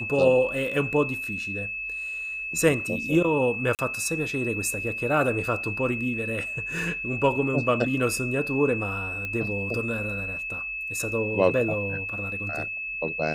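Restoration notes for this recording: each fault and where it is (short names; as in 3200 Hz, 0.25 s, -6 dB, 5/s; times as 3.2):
tone 2600 Hz -30 dBFS
3.75–3.79 gap 38 ms
9.25 pop -19 dBFS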